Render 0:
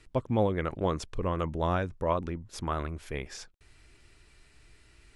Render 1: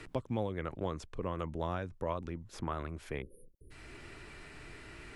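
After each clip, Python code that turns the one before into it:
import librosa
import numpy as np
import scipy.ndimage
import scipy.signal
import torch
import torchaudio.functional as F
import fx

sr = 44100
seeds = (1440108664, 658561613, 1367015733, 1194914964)

y = fx.spec_erase(x, sr, start_s=3.22, length_s=0.49, low_hz=560.0, high_hz=9100.0)
y = fx.band_squash(y, sr, depth_pct=70)
y = F.gain(torch.from_numpy(y), -7.0).numpy()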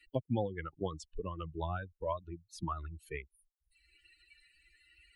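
y = fx.bin_expand(x, sr, power=3.0)
y = F.gain(torch.from_numpy(y), 5.5).numpy()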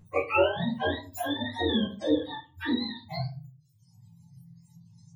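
y = fx.octave_mirror(x, sr, pivot_hz=550.0)
y = fx.room_shoebox(y, sr, seeds[0], volume_m3=180.0, walls='furnished', distance_m=2.2)
y = F.gain(torch.from_numpy(y), 6.5).numpy()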